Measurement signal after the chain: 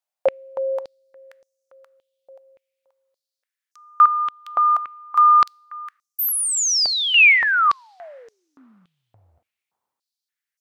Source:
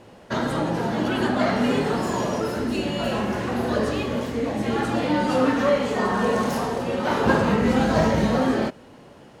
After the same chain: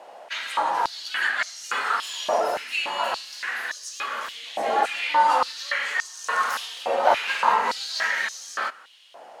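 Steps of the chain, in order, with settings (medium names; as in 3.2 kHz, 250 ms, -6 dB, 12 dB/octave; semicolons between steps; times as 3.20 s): two-slope reverb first 0.76 s, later 2.9 s, from -20 dB, DRR 19.5 dB; step-sequenced high-pass 3.5 Hz 700–6000 Hz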